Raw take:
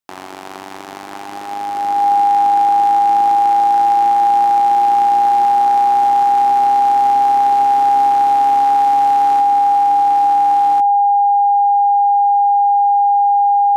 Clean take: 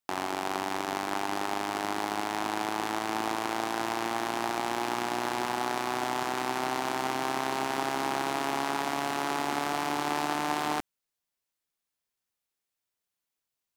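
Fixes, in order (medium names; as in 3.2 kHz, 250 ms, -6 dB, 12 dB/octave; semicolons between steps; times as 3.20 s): band-stop 810 Hz, Q 30; gain correction +3.5 dB, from 9.40 s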